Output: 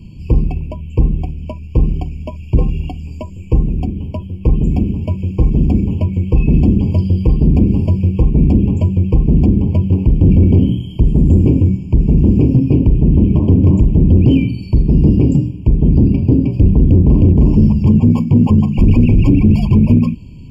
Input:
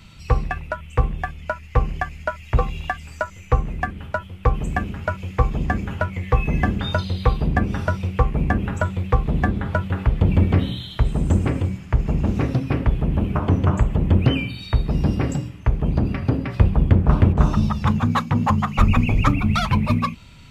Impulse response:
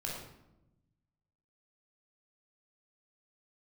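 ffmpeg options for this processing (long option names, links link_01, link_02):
-af "asoftclip=type=hard:threshold=-16.5dB,lowshelf=frequency=490:width_type=q:width=1.5:gain=13.5,afftfilt=real='re*eq(mod(floor(b*sr/1024/1100),2),0)':imag='im*eq(mod(floor(b*sr/1024/1100),2),0)':win_size=1024:overlap=0.75,volume=-2.5dB"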